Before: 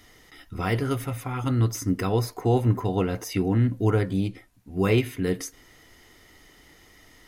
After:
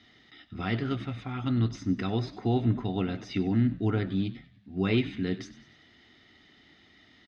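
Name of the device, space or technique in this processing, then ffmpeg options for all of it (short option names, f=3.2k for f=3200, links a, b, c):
frequency-shifting delay pedal into a guitar cabinet: -filter_complex "[0:a]asplit=5[a][b][c][d][e];[b]adelay=96,afreqshift=-75,volume=-15.5dB[f];[c]adelay=192,afreqshift=-150,volume=-22.1dB[g];[d]adelay=288,afreqshift=-225,volume=-28.6dB[h];[e]adelay=384,afreqshift=-300,volume=-35.2dB[i];[a][f][g][h][i]amix=inputs=5:normalize=0,highpass=90,equalizer=f=230:t=q:w=4:g=6,equalizer=f=490:t=q:w=4:g=-9,equalizer=f=1k:t=q:w=4:g=-8,equalizer=f=3.7k:t=q:w=4:g=7,lowpass=f=4.5k:w=0.5412,lowpass=f=4.5k:w=1.3066,volume=-4dB"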